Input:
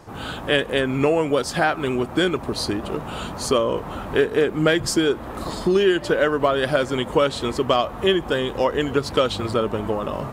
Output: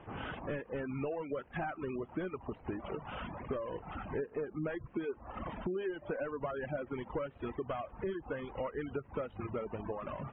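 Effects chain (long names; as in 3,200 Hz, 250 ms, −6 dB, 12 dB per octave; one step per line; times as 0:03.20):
variable-slope delta modulation 16 kbit/s
reverb reduction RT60 1.3 s
gate on every frequency bin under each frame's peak −30 dB strong
downward compressor 3 to 1, threshold −30 dBFS, peak gain reduction 11.5 dB
level −7 dB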